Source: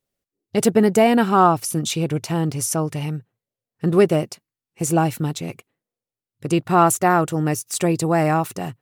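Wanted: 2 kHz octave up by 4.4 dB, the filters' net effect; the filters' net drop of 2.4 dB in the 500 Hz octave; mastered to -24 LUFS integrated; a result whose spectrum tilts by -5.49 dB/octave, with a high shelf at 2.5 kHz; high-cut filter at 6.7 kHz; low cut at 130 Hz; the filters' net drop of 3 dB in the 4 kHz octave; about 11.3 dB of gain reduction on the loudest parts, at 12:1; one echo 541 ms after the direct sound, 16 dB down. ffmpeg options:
-af "highpass=130,lowpass=6700,equalizer=f=500:t=o:g=-3.5,equalizer=f=2000:t=o:g=8.5,highshelf=f=2500:g=-3.5,equalizer=f=4000:t=o:g=-4.5,acompressor=threshold=0.0794:ratio=12,aecho=1:1:541:0.158,volume=1.68"

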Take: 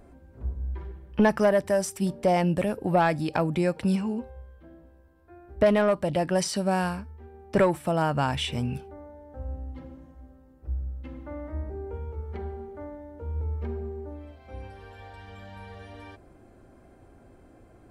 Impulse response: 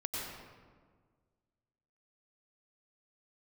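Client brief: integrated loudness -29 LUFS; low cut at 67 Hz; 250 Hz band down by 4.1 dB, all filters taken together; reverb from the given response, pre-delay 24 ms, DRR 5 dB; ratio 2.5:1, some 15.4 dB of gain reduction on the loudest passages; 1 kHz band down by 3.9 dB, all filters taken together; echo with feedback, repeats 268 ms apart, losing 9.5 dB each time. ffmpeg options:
-filter_complex "[0:a]highpass=67,equalizer=f=250:t=o:g=-6,equalizer=f=1000:t=o:g=-5,acompressor=threshold=0.00631:ratio=2.5,aecho=1:1:268|536|804|1072:0.335|0.111|0.0365|0.012,asplit=2[s0][s1];[1:a]atrim=start_sample=2205,adelay=24[s2];[s1][s2]afir=irnorm=-1:irlink=0,volume=0.398[s3];[s0][s3]amix=inputs=2:normalize=0,volume=4.47"

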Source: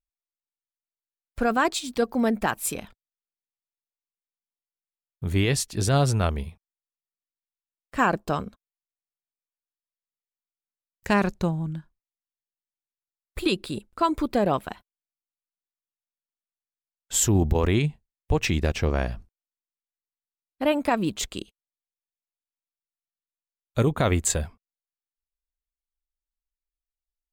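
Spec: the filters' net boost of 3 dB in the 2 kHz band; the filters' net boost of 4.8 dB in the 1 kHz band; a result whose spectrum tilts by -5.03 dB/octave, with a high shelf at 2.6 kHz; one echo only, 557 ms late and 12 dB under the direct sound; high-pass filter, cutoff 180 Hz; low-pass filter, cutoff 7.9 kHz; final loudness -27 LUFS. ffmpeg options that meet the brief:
-af "highpass=180,lowpass=7900,equalizer=f=1000:t=o:g=6,equalizer=f=2000:t=o:g=4.5,highshelf=f=2600:g=-6.5,aecho=1:1:557:0.251,volume=0.841"

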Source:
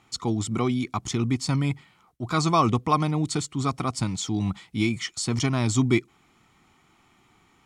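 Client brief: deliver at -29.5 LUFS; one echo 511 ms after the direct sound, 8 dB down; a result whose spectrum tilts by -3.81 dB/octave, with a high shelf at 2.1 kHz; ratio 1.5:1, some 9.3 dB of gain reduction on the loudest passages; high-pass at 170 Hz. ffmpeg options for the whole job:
-af "highpass=170,highshelf=f=2100:g=4,acompressor=threshold=0.00794:ratio=1.5,aecho=1:1:511:0.398,volume=1.58"

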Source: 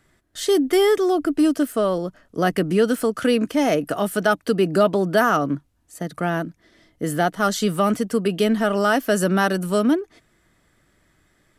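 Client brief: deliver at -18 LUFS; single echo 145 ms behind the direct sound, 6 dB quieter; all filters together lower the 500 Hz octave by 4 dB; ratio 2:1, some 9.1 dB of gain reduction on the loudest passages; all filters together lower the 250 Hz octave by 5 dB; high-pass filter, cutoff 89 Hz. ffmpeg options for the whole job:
-af "highpass=89,equalizer=f=250:t=o:g=-5.5,equalizer=f=500:t=o:g=-3.5,acompressor=threshold=0.0224:ratio=2,aecho=1:1:145:0.501,volume=4.47"

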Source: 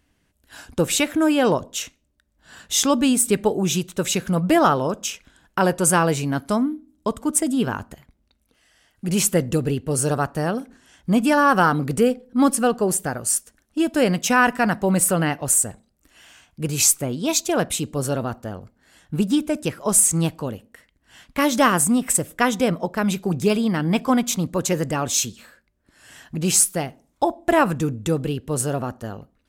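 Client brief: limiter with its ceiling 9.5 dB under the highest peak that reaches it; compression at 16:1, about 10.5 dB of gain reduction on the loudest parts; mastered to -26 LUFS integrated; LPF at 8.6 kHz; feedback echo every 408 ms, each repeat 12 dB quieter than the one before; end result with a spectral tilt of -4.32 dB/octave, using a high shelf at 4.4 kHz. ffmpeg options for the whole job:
-af "lowpass=8600,highshelf=f=4400:g=3.5,acompressor=threshold=0.0794:ratio=16,alimiter=limit=0.119:level=0:latency=1,aecho=1:1:408|816|1224:0.251|0.0628|0.0157,volume=1.41"

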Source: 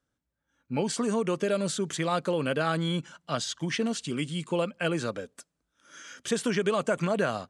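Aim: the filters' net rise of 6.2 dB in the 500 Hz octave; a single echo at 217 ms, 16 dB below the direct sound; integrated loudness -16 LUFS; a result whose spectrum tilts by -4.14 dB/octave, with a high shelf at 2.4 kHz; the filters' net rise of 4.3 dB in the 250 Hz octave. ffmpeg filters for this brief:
-af "equalizer=f=250:t=o:g=4,equalizer=f=500:t=o:g=6,highshelf=f=2400:g=8,aecho=1:1:217:0.158,volume=2.51"

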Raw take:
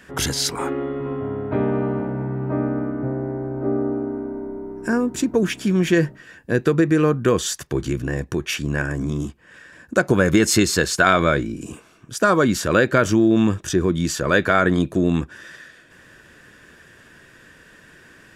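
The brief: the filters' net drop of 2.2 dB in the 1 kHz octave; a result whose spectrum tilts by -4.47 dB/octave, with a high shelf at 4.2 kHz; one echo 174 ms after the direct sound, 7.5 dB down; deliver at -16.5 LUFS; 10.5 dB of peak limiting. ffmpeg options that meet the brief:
-af "equalizer=f=1000:t=o:g=-4,highshelf=f=4200:g=5.5,alimiter=limit=0.224:level=0:latency=1,aecho=1:1:174:0.422,volume=2.24"

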